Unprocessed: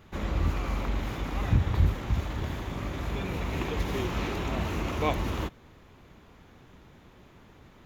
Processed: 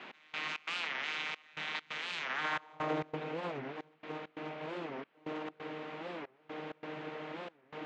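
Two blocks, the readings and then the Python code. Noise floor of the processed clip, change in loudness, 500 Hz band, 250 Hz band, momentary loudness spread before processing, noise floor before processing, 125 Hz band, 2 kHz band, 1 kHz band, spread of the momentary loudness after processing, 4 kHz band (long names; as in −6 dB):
−68 dBFS, −9.0 dB, −5.5 dB, −10.0 dB, 8 LU, −55 dBFS, −22.0 dB, +1.0 dB, −4.5 dB, 10 LU, 0.0 dB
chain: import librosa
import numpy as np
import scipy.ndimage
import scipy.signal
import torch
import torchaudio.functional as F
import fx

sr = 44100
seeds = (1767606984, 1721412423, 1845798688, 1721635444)

y = fx.filter_sweep_highpass(x, sr, from_hz=2500.0, to_hz=460.0, start_s=2.21, end_s=3.0, q=1.5)
y = fx.over_compress(y, sr, threshold_db=-41.0, ratio=-0.5)
y = fx.vocoder(y, sr, bands=32, carrier='saw', carrier_hz=154.0)
y = fx.dmg_noise_band(y, sr, seeds[0], low_hz=180.0, high_hz=2800.0, level_db=-54.0)
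y = fx.air_absorb(y, sr, metres=71.0)
y = fx.step_gate(y, sr, bpm=134, pattern='x..xx.xxxxx', floor_db=-24.0, edge_ms=4.5)
y = fx.record_warp(y, sr, rpm=45.0, depth_cents=250.0)
y = y * 10.0 ** (4.5 / 20.0)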